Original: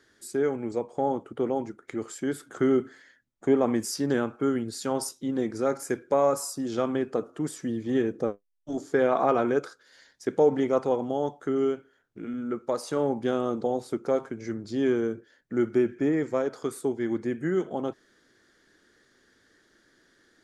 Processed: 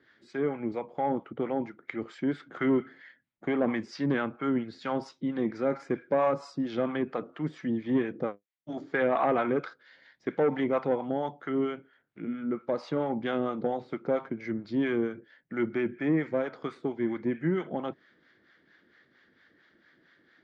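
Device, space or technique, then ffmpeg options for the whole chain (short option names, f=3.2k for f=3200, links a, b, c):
guitar amplifier with harmonic tremolo: -filter_complex "[0:a]acrossover=split=650[a][b];[a]aeval=exprs='val(0)*(1-0.7/2+0.7/2*cos(2*PI*4.4*n/s))':c=same[c];[b]aeval=exprs='val(0)*(1-0.7/2-0.7/2*cos(2*PI*4.4*n/s))':c=same[d];[c][d]amix=inputs=2:normalize=0,asoftclip=type=tanh:threshold=-18dB,highpass=86,equalizer=f=110:t=q:w=4:g=-3,equalizer=f=160:t=q:w=4:g=4,equalizer=f=420:t=q:w=4:g=-5,equalizer=f=2.1k:t=q:w=4:g=6,lowpass=f=3.8k:w=0.5412,lowpass=f=3.8k:w=1.3066,volume=3dB"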